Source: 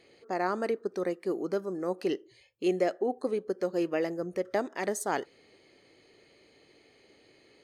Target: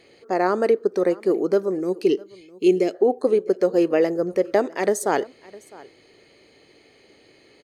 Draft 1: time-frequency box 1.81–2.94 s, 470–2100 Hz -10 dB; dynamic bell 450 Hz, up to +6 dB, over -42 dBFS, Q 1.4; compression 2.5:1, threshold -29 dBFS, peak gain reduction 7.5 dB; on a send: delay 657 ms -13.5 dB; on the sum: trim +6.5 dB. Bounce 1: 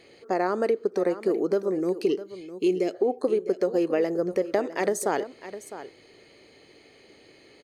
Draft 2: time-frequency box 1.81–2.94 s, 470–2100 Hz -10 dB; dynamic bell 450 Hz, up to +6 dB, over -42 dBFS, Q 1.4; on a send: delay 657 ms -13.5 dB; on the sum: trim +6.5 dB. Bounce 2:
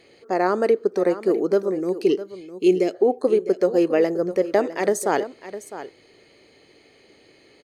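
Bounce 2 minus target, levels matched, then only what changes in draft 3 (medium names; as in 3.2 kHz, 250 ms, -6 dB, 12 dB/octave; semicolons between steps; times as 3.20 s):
echo-to-direct +8.5 dB
change: delay 657 ms -22 dB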